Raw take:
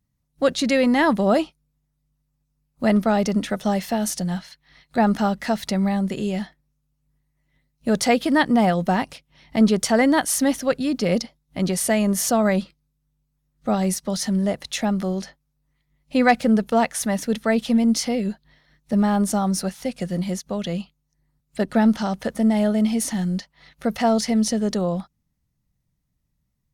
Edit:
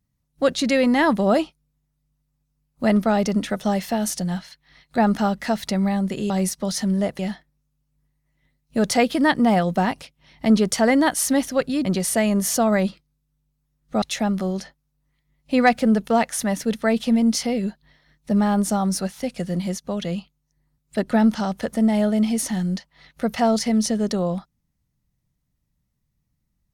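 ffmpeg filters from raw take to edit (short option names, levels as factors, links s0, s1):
-filter_complex "[0:a]asplit=5[s0][s1][s2][s3][s4];[s0]atrim=end=6.302[s5];[s1]atrim=start=13.748:end=14.642[s6];[s2]atrim=start=6.298:end=10.962[s7];[s3]atrim=start=11.578:end=13.752[s8];[s4]atrim=start=14.638[s9];[s5][s6]acrossfade=d=0.004:c1=hsin:c2=hsin[s10];[s10][s7]acrossfade=d=0.004:c1=hsin:c2=hsin[s11];[s11][s8]acrossfade=d=0.004:c1=hsin:c2=hsin[s12];[s12][s9]acrossfade=d=0.004:c1=hsin:c2=hsin"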